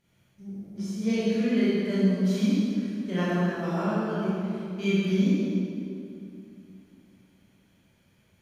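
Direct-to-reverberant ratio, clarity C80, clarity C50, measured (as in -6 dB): -9.5 dB, -1.5 dB, -4.5 dB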